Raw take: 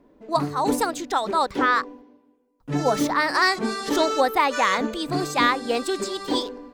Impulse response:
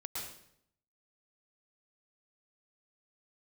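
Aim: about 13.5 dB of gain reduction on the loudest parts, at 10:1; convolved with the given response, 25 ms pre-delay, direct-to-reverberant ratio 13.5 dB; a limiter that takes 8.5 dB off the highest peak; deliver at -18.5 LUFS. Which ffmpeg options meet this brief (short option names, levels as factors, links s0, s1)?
-filter_complex "[0:a]acompressor=threshold=0.0355:ratio=10,alimiter=level_in=1.58:limit=0.0631:level=0:latency=1,volume=0.631,asplit=2[s0][s1];[1:a]atrim=start_sample=2205,adelay=25[s2];[s1][s2]afir=irnorm=-1:irlink=0,volume=0.2[s3];[s0][s3]amix=inputs=2:normalize=0,volume=8.41"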